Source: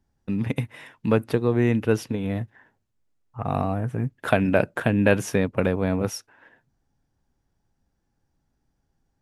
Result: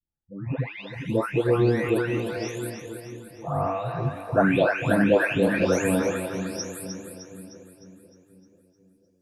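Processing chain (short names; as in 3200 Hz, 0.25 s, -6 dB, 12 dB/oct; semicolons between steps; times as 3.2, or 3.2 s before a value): spectral delay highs late, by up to 0.656 s; spectral noise reduction 21 dB; split-band echo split 420 Hz, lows 0.491 s, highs 0.306 s, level -7 dB; gain +2.5 dB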